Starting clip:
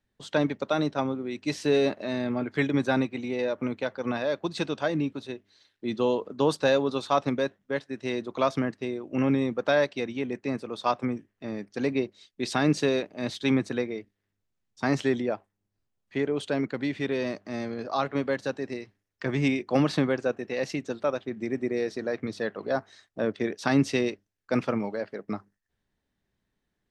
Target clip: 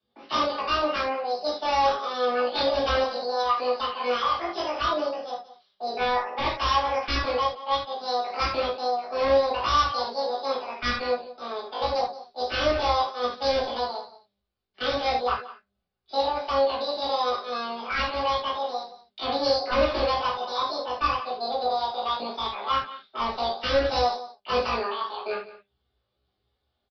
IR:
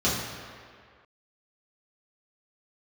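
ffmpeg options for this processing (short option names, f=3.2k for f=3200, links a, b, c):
-filter_complex "[0:a]aemphasis=mode=production:type=bsi,asetrate=88200,aresample=44100,atempo=0.5,aecho=1:1:176:0.158,aresample=11025,aeval=exprs='0.0794*(abs(mod(val(0)/0.0794+3,4)-2)-1)':c=same,aresample=44100[a];[1:a]atrim=start_sample=2205,atrim=end_sample=4410[b];[a][b]afir=irnorm=-1:irlink=0,asubboost=boost=9:cutoff=67,volume=-8dB"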